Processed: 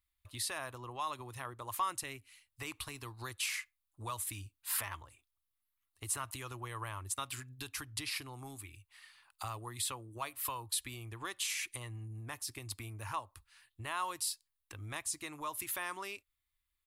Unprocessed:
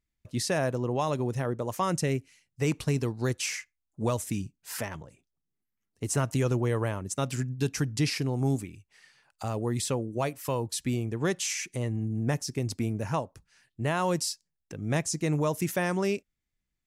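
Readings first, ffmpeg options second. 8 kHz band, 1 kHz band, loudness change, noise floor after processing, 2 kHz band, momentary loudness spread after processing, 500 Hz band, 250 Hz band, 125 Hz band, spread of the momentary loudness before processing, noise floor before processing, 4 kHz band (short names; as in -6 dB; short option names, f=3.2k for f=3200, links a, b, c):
-4.0 dB, -5.5 dB, -9.5 dB, -85 dBFS, -6.0 dB, 12 LU, -19.5 dB, -21.5 dB, -17.5 dB, 8 LU, -83 dBFS, -4.0 dB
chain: -af "acompressor=threshold=-33dB:ratio=3,firequalizer=gain_entry='entry(100,0);entry(160,-24);entry(310,-7);entry(460,-13);entry(1100,9);entry(1500,2);entry(3800,8);entry(5800,-4);entry(9900,10)':delay=0.05:min_phase=1,volume=-3.5dB"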